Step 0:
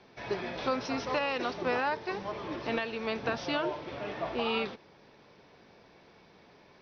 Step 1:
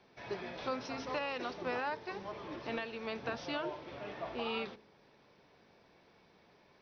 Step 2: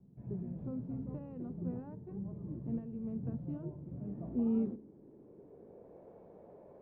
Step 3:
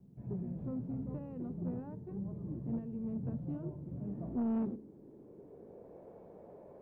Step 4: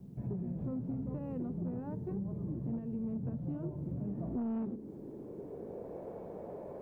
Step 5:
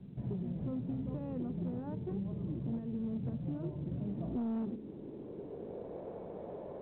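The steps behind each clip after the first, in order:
de-hum 53.7 Hz, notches 9; trim -6.5 dB
low-pass sweep 170 Hz -> 560 Hz, 3.90–6.06 s; trim +7 dB
saturation -31 dBFS, distortion -14 dB; trim +2 dB
compression, threshold -44 dBFS, peak gain reduction 12 dB; trim +9 dB
µ-law 64 kbps 8 kHz

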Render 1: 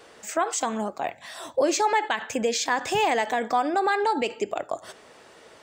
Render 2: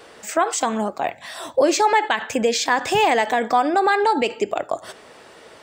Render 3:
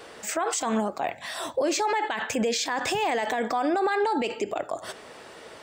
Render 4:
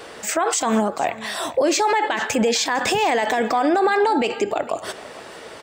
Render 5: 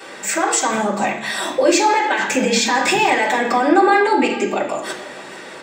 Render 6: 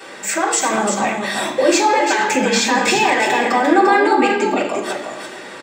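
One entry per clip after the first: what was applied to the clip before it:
peaking EQ 6.6 kHz -3.5 dB 0.34 oct; trim +5.5 dB
peak limiter -17.5 dBFS, peak gain reduction 11.5 dB
delay 453 ms -18.5 dB; trim +6.5 dB
reverberation RT60 0.65 s, pre-delay 3 ms, DRR -6.5 dB; trim -1.5 dB
delay 346 ms -6 dB

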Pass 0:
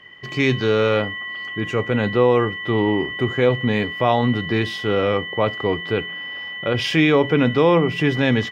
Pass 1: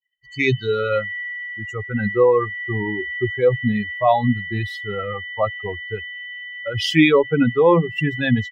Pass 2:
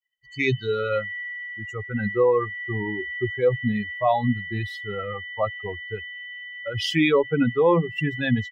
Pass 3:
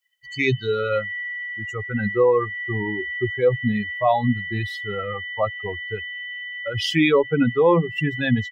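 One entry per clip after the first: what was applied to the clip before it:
expander on every frequency bin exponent 3; trim +6 dB
loudness maximiser +5 dB; trim -9 dB
tape noise reduction on one side only encoder only; trim +2 dB

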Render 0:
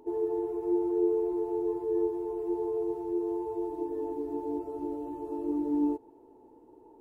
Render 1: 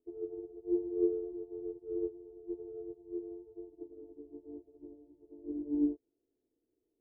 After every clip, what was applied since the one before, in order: elliptic low-pass 680 Hz, stop band 40 dB; bass shelf 210 Hz +7.5 dB; upward expansion 2.5:1, over -39 dBFS; trim -2.5 dB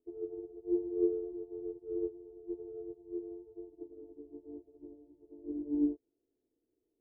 no audible change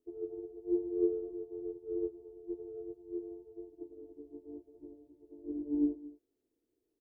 delay 224 ms -18.5 dB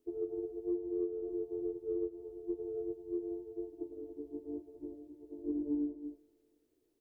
compression 10:1, threshold -37 dBFS, peak gain reduction 13.5 dB; feedback comb 300 Hz, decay 0.75 s, mix 50%; Schroeder reverb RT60 2.6 s, combs from 26 ms, DRR 18.5 dB; trim +11 dB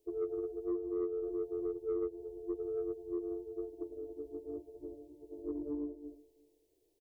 static phaser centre 560 Hz, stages 4; delay 348 ms -23.5 dB; saturation -31 dBFS, distortion -22 dB; trim +4.5 dB

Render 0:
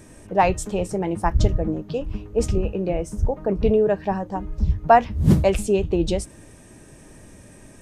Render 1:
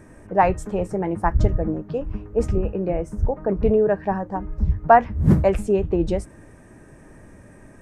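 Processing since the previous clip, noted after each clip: resonant high shelf 2.4 kHz -9.5 dB, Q 1.5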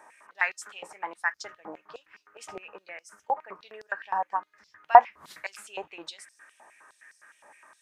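step-sequenced high-pass 9.7 Hz 860–5000 Hz; trim -3.5 dB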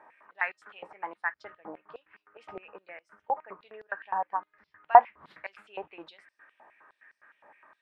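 distance through air 430 m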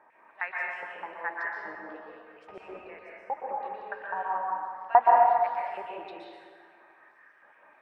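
plate-style reverb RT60 1.9 s, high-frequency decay 0.65×, pre-delay 110 ms, DRR -4 dB; trim -4 dB

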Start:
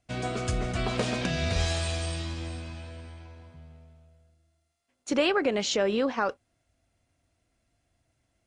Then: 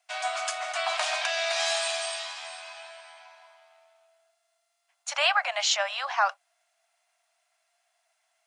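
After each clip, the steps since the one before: steep high-pass 640 Hz 96 dB/octave; trim +5.5 dB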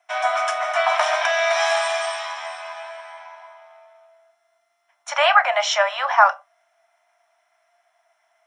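reverberation RT60 0.25 s, pre-delay 3 ms, DRR 6 dB; trim -1.5 dB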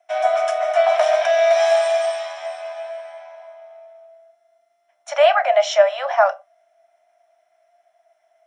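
resonant low shelf 790 Hz +6.5 dB, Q 3; trim -3.5 dB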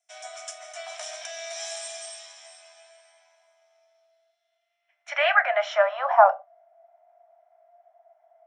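band-pass sweep 7.5 kHz -> 800 Hz, 3.46–6.42 s; trim +4.5 dB

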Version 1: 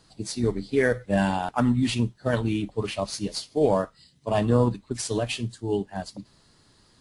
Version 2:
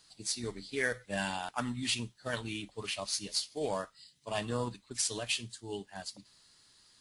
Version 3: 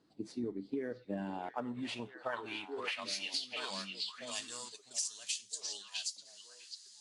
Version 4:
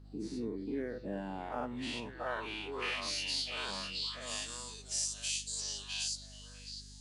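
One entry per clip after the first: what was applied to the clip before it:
tilt shelf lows -8.5 dB, about 1.2 kHz; trim -7.5 dB
band-pass sweep 300 Hz -> 6.5 kHz, 1.24–4.09 s; repeats whose band climbs or falls 651 ms, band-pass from 3.2 kHz, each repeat -1.4 oct, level -6 dB; compression 10:1, threshold -46 dBFS, peak gain reduction 15 dB; trim +12 dB
every event in the spectrogram widened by 120 ms; hum 50 Hz, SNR 14 dB; trim -4 dB

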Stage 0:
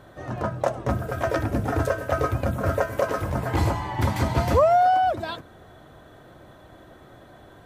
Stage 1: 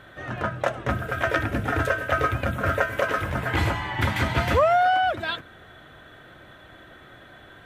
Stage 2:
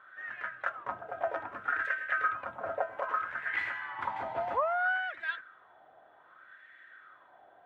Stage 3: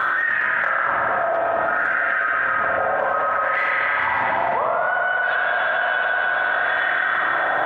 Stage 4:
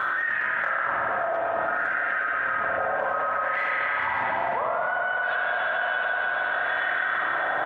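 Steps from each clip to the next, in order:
high-order bell 2.2 kHz +10 dB; trim -2 dB
wah-wah 0.63 Hz 740–1900 Hz, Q 4.5
spring tank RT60 3.8 s, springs 43/49/60 ms, chirp 75 ms, DRR -7 dB; level flattener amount 100%; trim -1 dB
delay 555 ms -16.5 dB; trim -5.5 dB

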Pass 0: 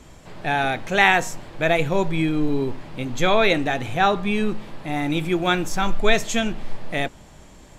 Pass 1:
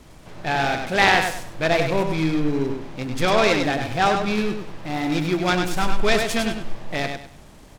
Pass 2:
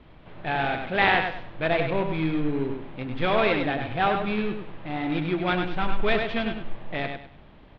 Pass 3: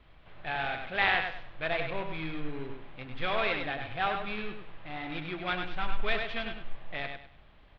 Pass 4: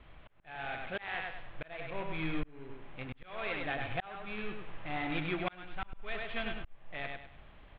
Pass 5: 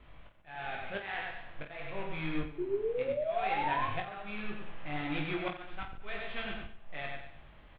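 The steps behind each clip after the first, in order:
on a send: feedback delay 100 ms, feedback 28%, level -5.5 dB; on the sum: delay time shaken by noise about 1.4 kHz, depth 0.037 ms; trim -1 dB
steep low-pass 3.6 kHz 36 dB/octave; trim -4 dB
peaking EQ 250 Hz -10.5 dB 2.6 oct; band-stop 920 Hz, Q 17; trim -3.5 dB
low-pass 3.5 kHz 24 dB/octave; slow attack 749 ms; trim +2.5 dB
painted sound rise, 2.58–3.88 s, 350–1100 Hz -33 dBFS; on a send: reverse bouncing-ball echo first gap 20 ms, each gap 1.4×, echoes 5; on the sum: trim -2 dB

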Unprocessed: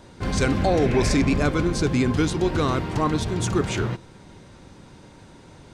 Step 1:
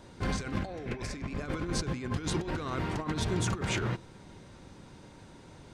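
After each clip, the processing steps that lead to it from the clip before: dynamic bell 1.7 kHz, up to +4 dB, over -37 dBFS, Q 0.91; compressor with a negative ratio -24 dBFS, ratio -0.5; trim -8 dB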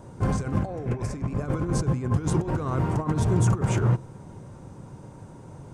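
ten-band graphic EQ 125 Hz +10 dB, 500 Hz +3 dB, 1 kHz +4 dB, 2 kHz -6 dB, 4 kHz -12 dB, 8 kHz +3 dB; trim +3 dB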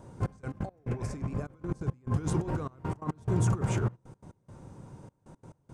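trance gate "xxx..x.x..xxxx" 174 bpm -24 dB; trim -5 dB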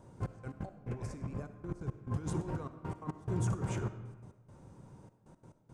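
reverberation RT60 1.3 s, pre-delay 20 ms, DRR 11 dB; trim -6.5 dB

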